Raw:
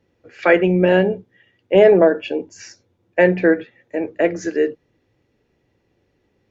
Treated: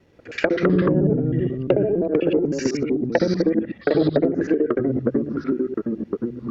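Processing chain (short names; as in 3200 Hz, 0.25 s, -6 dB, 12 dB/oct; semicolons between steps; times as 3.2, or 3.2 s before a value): local time reversal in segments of 63 ms; compressor 4:1, threshold -22 dBFS, peak gain reduction 13 dB; soft clip -11 dBFS, distortion -25 dB; treble ducked by the level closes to 360 Hz, closed at -20.5 dBFS; echoes that change speed 0.124 s, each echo -3 st, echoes 2; gain +7.5 dB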